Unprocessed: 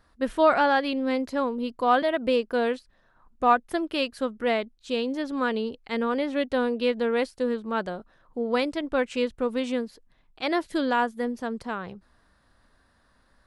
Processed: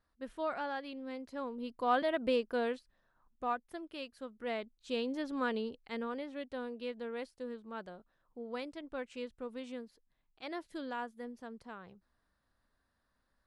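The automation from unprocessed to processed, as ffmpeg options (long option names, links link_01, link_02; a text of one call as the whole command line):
ffmpeg -i in.wav -af "volume=2dB,afade=type=in:start_time=1.22:duration=0.98:silence=0.316228,afade=type=out:start_time=2.2:duration=1.46:silence=0.316228,afade=type=in:start_time=4.29:duration=0.68:silence=0.354813,afade=type=out:start_time=5.55:duration=0.76:silence=0.398107" out.wav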